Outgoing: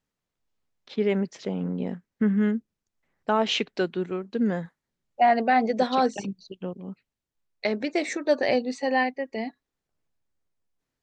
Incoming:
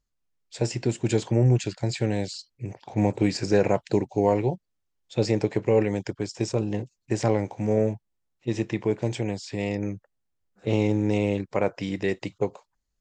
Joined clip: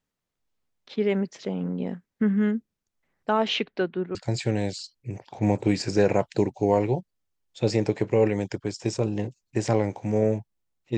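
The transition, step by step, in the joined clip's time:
outgoing
3.48–4.15 LPF 5200 Hz -> 1600 Hz
4.15 switch to incoming from 1.7 s

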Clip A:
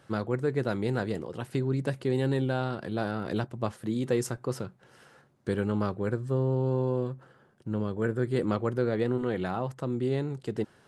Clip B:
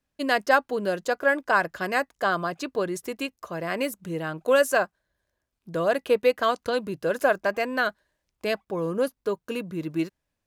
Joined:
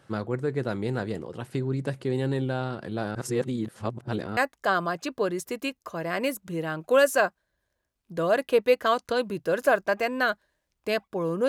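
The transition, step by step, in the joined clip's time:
clip A
3.15–4.37 reverse
4.37 switch to clip B from 1.94 s

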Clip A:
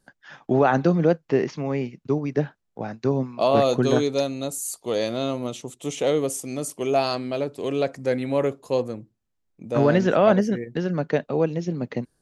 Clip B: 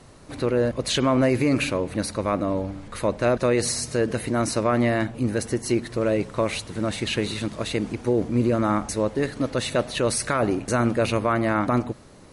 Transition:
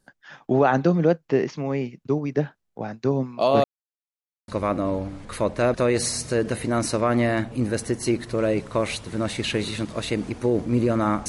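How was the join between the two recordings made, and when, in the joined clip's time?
clip A
3.64–4.48 mute
4.48 switch to clip B from 2.11 s

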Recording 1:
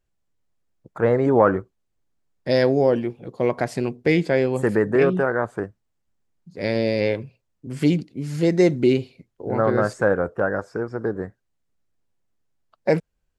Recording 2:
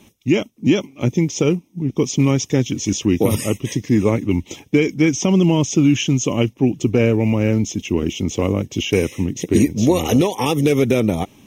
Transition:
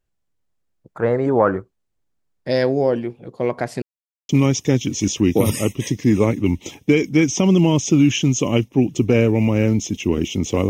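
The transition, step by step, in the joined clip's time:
recording 1
3.82–4.29 mute
4.29 switch to recording 2 from 2.14 s

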